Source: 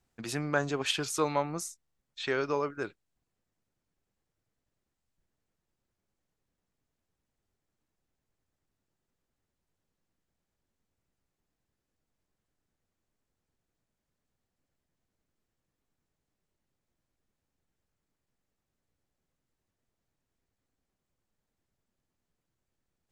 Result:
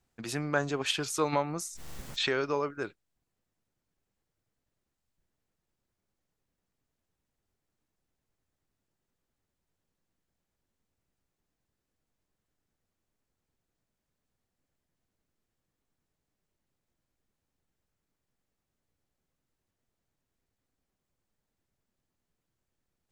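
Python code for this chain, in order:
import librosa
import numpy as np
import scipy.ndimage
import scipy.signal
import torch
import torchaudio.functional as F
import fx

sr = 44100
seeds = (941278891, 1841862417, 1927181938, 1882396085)

y = fx.pre_swell(x, sr, db_per_s=29.0, at=(1.32, 2.43), fade=0.02)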